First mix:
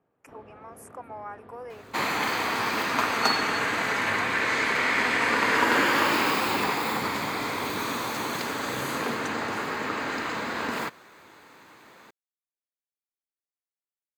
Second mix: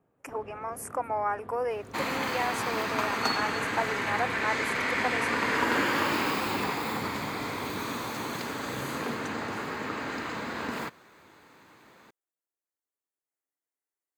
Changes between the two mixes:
speech +9.5 dB; second sound -5.0 dB; master: add bass shelf 270 Hz +6 dB

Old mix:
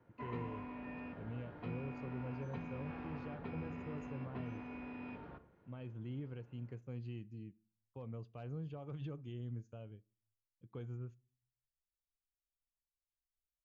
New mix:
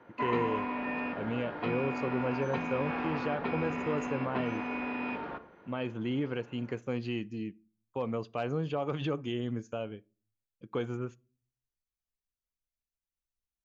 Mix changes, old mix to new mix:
speech +4.0 dB; master: remove FFT filter 120 Hz 0 dB, 220 Hz -10 dB, 970 Hz -16 dB

